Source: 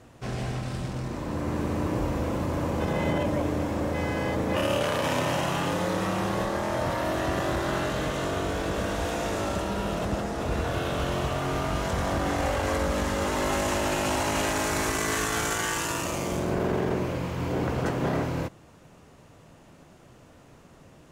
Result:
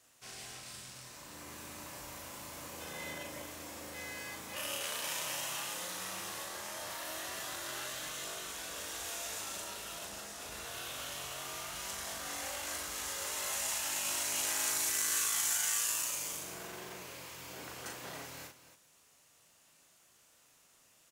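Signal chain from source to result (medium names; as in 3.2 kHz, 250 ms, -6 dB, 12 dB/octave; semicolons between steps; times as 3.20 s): pre-emphasis filter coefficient 0.97; on a send: loudspeakers at several distances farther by 13 m -4 dB, 95 m -12 dB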